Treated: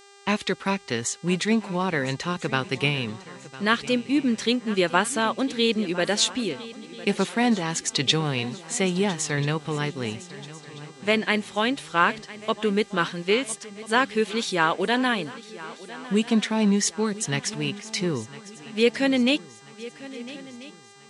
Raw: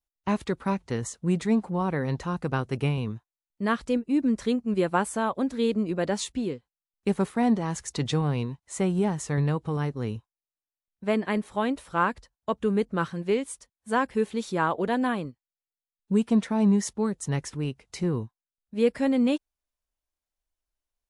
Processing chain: weighting filter D; buzz 400 Hz, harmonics 22, -54 dBFS -3 dB/oct; swung echo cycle 1.338 s, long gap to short 3:1, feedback 43%, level -17.5 dB; gain +2.5 dB

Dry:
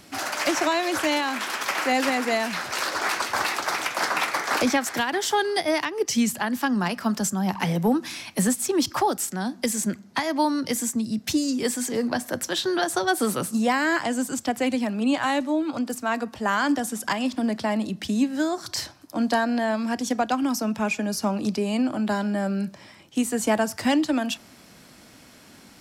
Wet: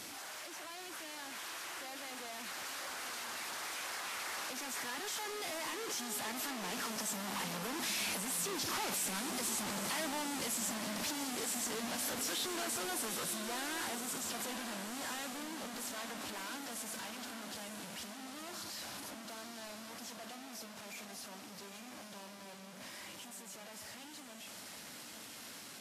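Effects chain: infinite clipping; Doppler pass-by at 9.88, 9 m/s, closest 4.1 m; low shelf 120 Hz -8.5 dB; compressor 20:1, threshold -41 dBFS, peak gain reduction 16.5 dB; low shelf 410 Hz -5.5 dB; diffused feedback echo 0.9 s, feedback 43%, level -7 dB; gain +5.5 dB; Vorbis 32 kbps 44100 Hz

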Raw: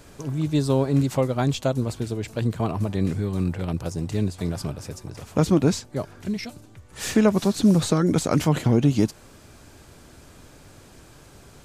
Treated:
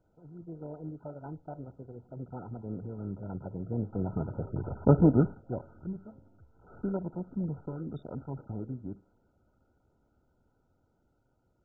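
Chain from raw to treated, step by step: Doppler pass-by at 4.61, 36 m/s, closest 9.8 m; air absorption 110 m; thin delay 1.185 s, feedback 58%, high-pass 4300 Hz, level -13 dB; Schroeder reverb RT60 0.35 s, combs from 29 ms, DRR 17.5 dB; gain +3 dB; MP2 8 kbps 16000 Hz

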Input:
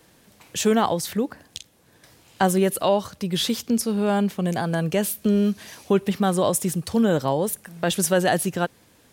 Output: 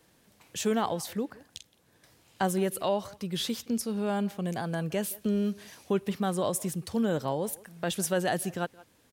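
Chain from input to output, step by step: speakerphone echo 0.17 s, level -20 dB; gain -8 dB

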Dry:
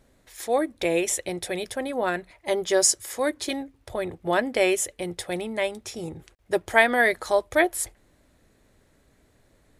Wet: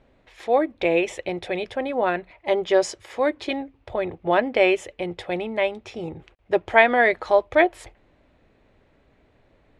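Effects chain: EQ curve 210 Hz 0 dB, 830 Hz +4 dB, 1700 Hz -1 dB, 2600 Hz +4 dB, 13000 Hz -29 dB; gain +1 dB

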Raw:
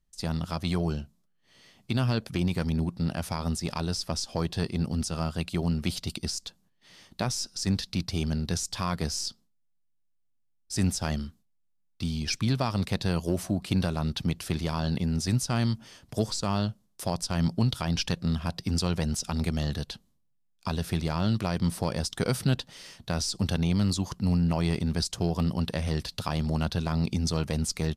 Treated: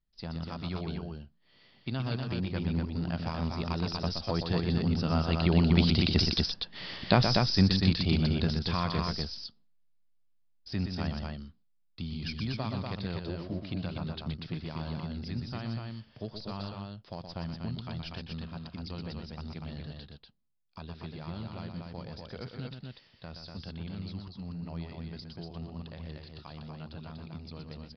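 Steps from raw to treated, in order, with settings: Doppler pass-by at 6.64, 5 m/s, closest 2.9 m; in parallel at -1 dB: compressor, threshold -50 dBFS, peak gain reduction 21.5 dB; on the sum: loudspeakers at several distances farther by 42 m -7 dB, 83 m -4 dB; downsampling 11025 Hz; gain +8.5 dB

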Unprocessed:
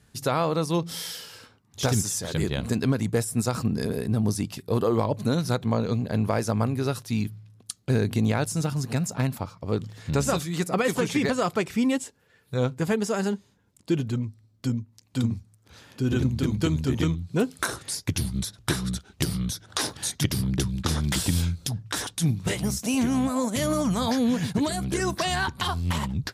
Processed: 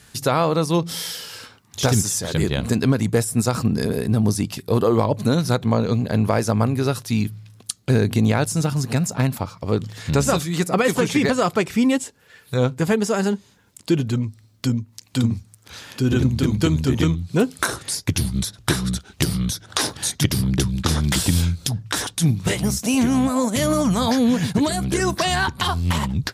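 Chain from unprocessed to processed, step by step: mismatched tape noise reduction encoder only; gain +5.5 dB

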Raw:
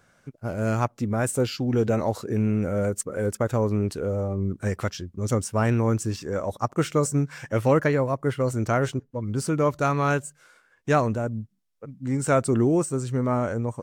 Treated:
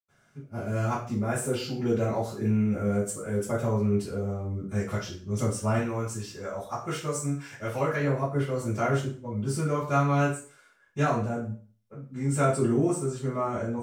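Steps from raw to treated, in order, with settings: 5.69–7.91 bell 170 Hz -7.5 dB 2.9 oct; reverb RT60 0.40 s, pre-delay 83 ms, DRR -60 dB

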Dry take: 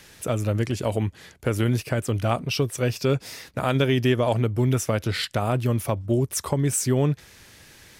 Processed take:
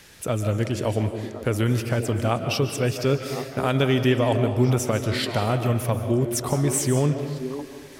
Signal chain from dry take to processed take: delay with a stepping band-pass 0.532 s, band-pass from 330 Hz, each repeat 1.4 oct, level -7 dB; digital reverb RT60 1.2 s, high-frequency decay 0.7×, pre-delay 0.105 s, DRR 7.5 dB

